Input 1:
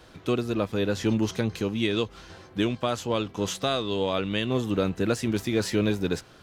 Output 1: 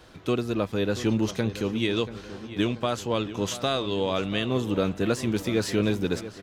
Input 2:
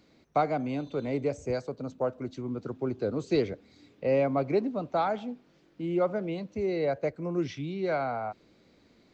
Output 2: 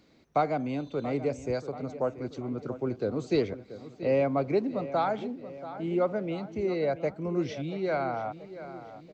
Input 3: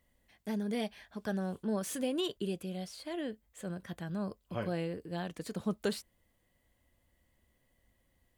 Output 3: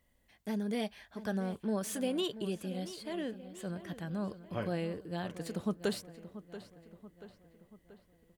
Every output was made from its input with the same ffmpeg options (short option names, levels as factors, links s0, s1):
-filter_complex "[0:a]asplit=2[s0][s1];[s1]adelay=683,lowpass=f=3800:p=1,volume=0.211,asplit=2[s2][s3];[s3]adelay=683,lowpass=f=3800:p=1,volume=0.54,asplit=2[s4][s5];[s5]adelay=683,lowpass=f=3800:p=1,volume=0.54,asplit=2[s6][s7];[s7]adelay=683,lowpass=f=3800:p=1,volume=0.54,asplit=2[s8][s9];[s9]adelay=683,lowpass=f=3800:p=1,volume=0.54[s10];[s0][s2][s4][s6][s8][s10]amix=inputs=6:normalize=0"